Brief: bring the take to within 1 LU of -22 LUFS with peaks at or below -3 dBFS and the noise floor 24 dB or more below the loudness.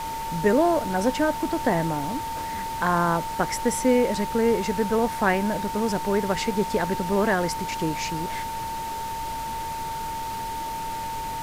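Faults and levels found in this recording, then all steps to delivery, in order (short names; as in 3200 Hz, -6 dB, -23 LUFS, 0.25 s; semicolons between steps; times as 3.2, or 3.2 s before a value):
steady tone 900 Hz; tone level -29 dBFS; noise floor -31 dBFS; noise floor target -50 dBFS; loudness -25.5 LUFS; peak -8.0 dBFS; loudness target -22.0 LUFS
-> notch 900 Hz, Q 30; noise print and reduce 19 dB; gain +3.5 dB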